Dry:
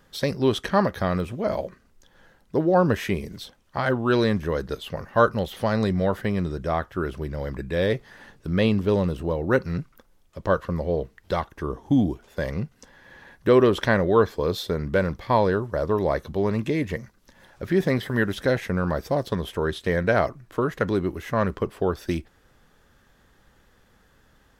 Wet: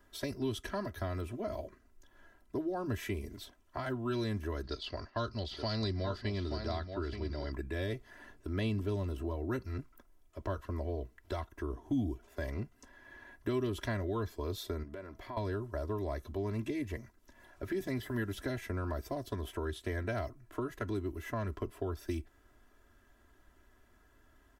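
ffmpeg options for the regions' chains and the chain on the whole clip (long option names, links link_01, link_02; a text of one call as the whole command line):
ffmpeg -i in.wav -filter_complex "[0:a]asettb=1/sr,asplit=3[link_01][link_02][link_03];[link_01]atrim=end=4.634[link_04];[link_02]atrim=start=4.63:end=7.52,asetpts=PTS-STARTPTS,afade=type=in:duration=0.004:curve=qsin,afade=type=out:start_time=2.886:duration=0.004:curve=qsin,agate=range=-33dB:threshold=-40dB:ratio=3:release=100:detection=peak,lowpass=frequency=4600:width_type=q:width=9.7,aecho=1:1:877:0.335,atrim=end_sample=127449[link_05];[link_03]atrim=start=7.516[link_06];[link_04][link_05]acrossfade=duration=0.004:curve1=hsin:curve2=qsin[link_07];[link_07][link_06]acrossfade=duration=0.004:curve1=qsin:curve2=hsin,asettb=1/sr,asplit=3[link_08][link_09][link_10];[link_08]atrim=end=14.834[link_11];[link_09]atrim=start=14.83:end=15.37,asetpts=PTS-STARTPTS,afade=type=in:duration=0.004:curve=qsin,afade=type=out:start_time=0.536:duration=0.004:curve=qsin,equalizer=frequency=62:width_type=o:width=2:gain=-6,acompressor=threshold=-36dB:ratio=4:attack=3.2:release=140:knee=1:detection=peak,aeval=exprs='val(0)+0.000501*sin(2*PI*650*n/s)':channel_layout=same[link_12];[link_10]atrim=start=15.366[link_13];[link_11][link_12]acrossfade=duration=0.004:curve1=hsin:curve2=qsin[link_14];[link_14][link_13]acrossfade=duration=0.004:curve1=qsin:curve2=hsin,equalizer=frequency=4100:width_type=o:width=1.3:gain=-6,aecho=1:1:3:1,acrossover=split=190|3000[link_15][link_16][link_17];[link_16]acompressor=threshold=-29dB:ratio=4[link_18];[link_15][link_18][link_17]amix=inputs=3:normalize=0,volume=-8.5dB" out.wav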